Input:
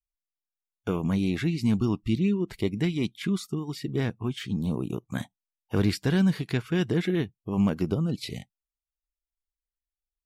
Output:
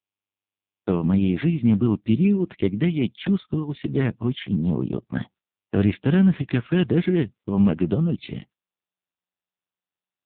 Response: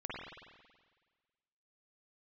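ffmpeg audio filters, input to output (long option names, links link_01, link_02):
-af "agate=range=-33dB:threshold=-43dB:ratio=3:detection=peak,dynaudnorm=framelen=130:gausssize=5:maxgain=11dB,volume=-4.5dB" -ar 8000 -c:a libopencore_amrnb -b:a 5900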